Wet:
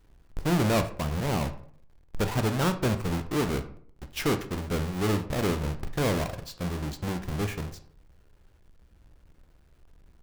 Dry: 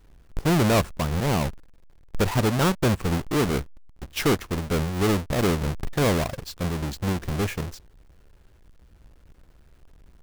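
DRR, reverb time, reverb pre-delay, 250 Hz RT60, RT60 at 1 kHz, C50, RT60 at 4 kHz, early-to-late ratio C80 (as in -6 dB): 8.0 dB, 0.55 s, 15 ms, 0.65 s, 0.55 s, 12.5 dB, 0.30 s, 17.0 dB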